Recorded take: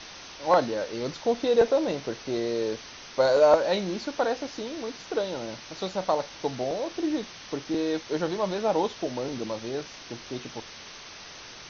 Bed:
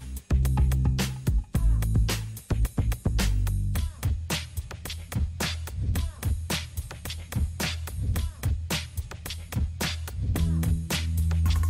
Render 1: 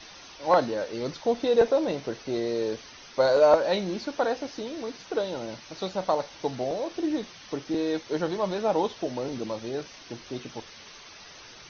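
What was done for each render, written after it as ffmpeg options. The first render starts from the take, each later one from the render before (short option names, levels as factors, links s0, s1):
-af "afftdn=nr=7:nf=-45"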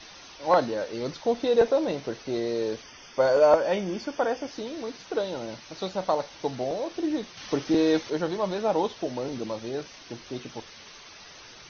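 -filter_complex "[0:a]asettb=1/sr,asplit=3[s0][s1][s2];[s0]atrim=end=2.824[s3];[s1]atrim=start=2.82:end=4.51,asetpts=PTS-STARTPTS,afade=t=in:d=0.004:c=qsin,afade=t=out:st=1.686:d=0.004:c=qsin,asuperstop=centerf=4000:order=8:qfactor=5.7[s4];[s2]atrim=start=4.506[s5];[s3][s4]acrossfade=d=0.004:c1=hsin:c2=qsin[s6];[s6][s5]acrossfade=d=0.004:c1=qsin:c2=hsin,asettb=1/sr,asplit=3[s7][s8][s9];[s7]atrim=end=7.374[s10];[s8]atrim=start=7.37:end=8.1,asetpts=PTS-STARTPTS,afade=t=in:d=0.004:c=qsin,afade=t=out:st=0.726:d=0.004:c=qsin,acontrast=43[s11];[s9]atrim=start=8.096[s12];[s10][s11]acrossfade=d=0.004:c1=hsin:c2=qsin[s13];[s13][s12]acrossfade=d=0.004:c1=qsin:c2=hsin"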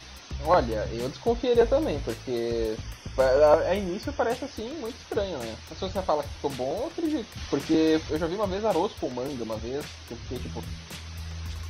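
-filter_complex "[1:a]volume=0.237[s0];[0:a][s0]amix=inputs=2:normalize=0"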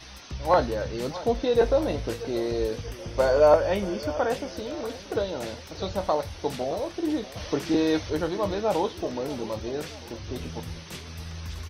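-filter_complex "[0:a]asplit=2[s0][s1];[s1]adelay=20,volume=0.251[s2];[s0][s2]amix=inputs=2:normalize=0,aecho=1:1:634|1268|1902|2536|3170:0.15|0.0763|0.0389|0.0198|0.0101"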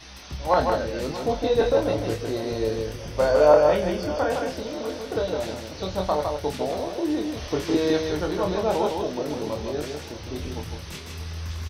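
-filter_complex "[0:a]asplit=2[s0][s1];[s1]adelay=27,volume=0.501[s2];[s0][s2]amix=inputs=2:normalize=0,aecho=1:1:158:0.596"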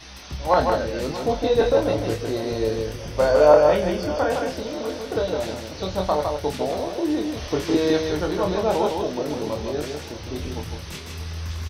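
-af "volume=1.26"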